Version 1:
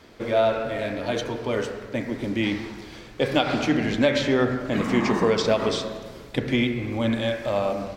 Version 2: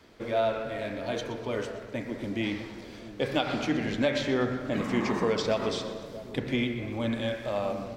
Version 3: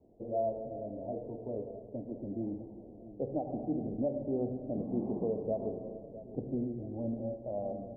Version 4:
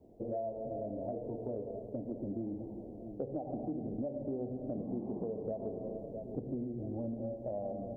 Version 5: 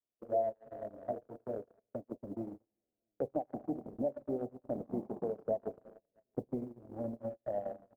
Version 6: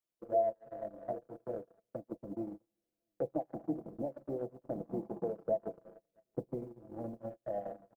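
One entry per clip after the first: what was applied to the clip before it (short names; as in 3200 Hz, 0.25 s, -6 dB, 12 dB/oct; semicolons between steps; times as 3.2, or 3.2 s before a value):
split-band echo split 890 Hz, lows 0.659 s, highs 0.123 s, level -15 dB; wow and flutter 18 cents; gain -6 dB
elliptic low-pass 730 Hz, stop band 50 dB; gain -5.5 dB
compressor, threshold -39 dBFS, peak gain reduction 11 dB; gain +4 dB
gate -36 dBFS, range -48 dB; tilt shelf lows -9.5 dB, about 880 Hz; gain +10.5 dB
comb 6 ms, depth 52%; gain -1 dB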